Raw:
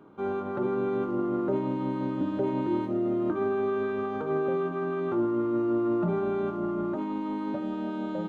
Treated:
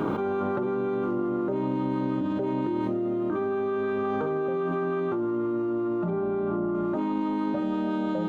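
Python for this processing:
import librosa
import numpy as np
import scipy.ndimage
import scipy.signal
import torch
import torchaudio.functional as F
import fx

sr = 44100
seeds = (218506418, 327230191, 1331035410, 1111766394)

y = fx.lowpass(x, sr, hz=1100.0, slope=6, at=(6.1, 6.75))
y = fx.env_flatten(y, sr, amount_pct=100)
y = y * librosa.db_to_amplitude(-3.5)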